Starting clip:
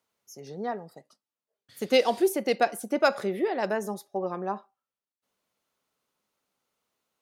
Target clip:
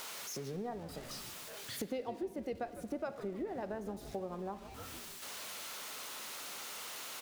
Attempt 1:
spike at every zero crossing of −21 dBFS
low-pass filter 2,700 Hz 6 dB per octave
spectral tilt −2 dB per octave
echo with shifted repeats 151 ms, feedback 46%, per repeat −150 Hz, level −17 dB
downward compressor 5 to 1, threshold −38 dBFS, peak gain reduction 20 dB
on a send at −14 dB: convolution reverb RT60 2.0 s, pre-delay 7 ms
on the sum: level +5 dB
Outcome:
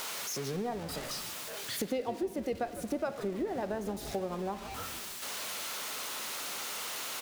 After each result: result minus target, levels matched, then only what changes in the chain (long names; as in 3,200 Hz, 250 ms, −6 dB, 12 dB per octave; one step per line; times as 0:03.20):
downward compressor: peak gain reduction −5.5 dB; spike at every zero crossing: distortion +6 dB
change: downward compressor 5 to 1, threshold −45 dBFS, peak gain reduction 25.5 dB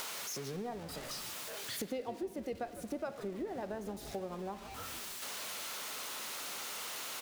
spike at every zero crossing: distortion +6 dB
change: spike at every zero crossing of −27.5 dBFS